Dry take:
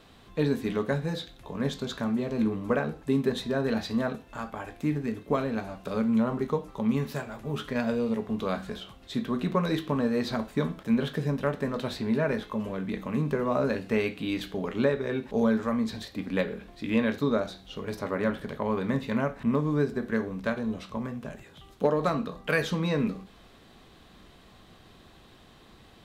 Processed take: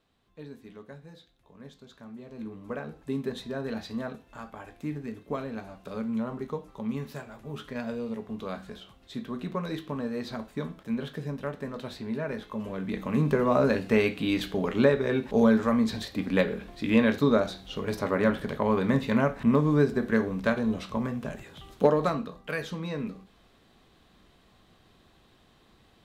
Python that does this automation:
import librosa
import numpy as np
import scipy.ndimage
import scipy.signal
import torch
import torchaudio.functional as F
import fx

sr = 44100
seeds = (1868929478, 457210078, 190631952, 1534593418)

y = fx.gain(x, sr, db=fx.line((1.93, -18.0), (3.05, -6.0), (12.28, -6.0), (13.25, 3.5), (21.86, 3.5), (22.43, -6.5)))